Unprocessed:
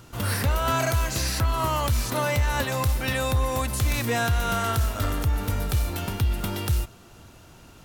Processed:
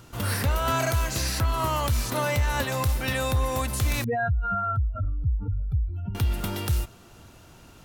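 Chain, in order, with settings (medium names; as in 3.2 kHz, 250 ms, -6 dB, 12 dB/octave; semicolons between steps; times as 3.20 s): 4.04–6.15 s: spectral contrast enhancement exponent 2.9; trim -1 dB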